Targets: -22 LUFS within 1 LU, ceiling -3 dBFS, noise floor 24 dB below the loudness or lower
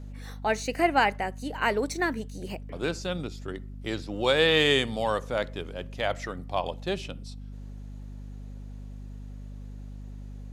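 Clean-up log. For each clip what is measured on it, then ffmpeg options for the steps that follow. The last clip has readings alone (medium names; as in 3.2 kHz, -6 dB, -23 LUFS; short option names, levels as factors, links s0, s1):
hum 50 Hz; highest harmonic 250 Hz; hum level -38 dBFS; loudness -28.0 LUFS; peak level -9.5 dBFS; loudness target -22.0 LUFS
-> -af "bandreject=f=50:t=h:w=4,bandreject=f=100:t=h:w=4,bandreject=f=150:t=h:w=4,bandreject=f=200:t=h:w=4,bandreject=f=250:t=h:w=4"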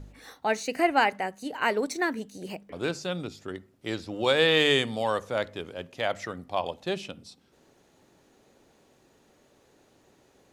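hum not found; loudness -27.5 LUFS; peak level -9.5 dBFS; loudness target -22.0 LUFS
-> -af "volume=1.88"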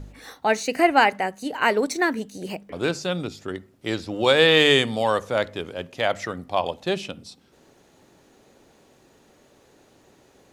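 loudness -22.5 LUFS; peak level -4.0 dBFS; noise floor -58 dBFS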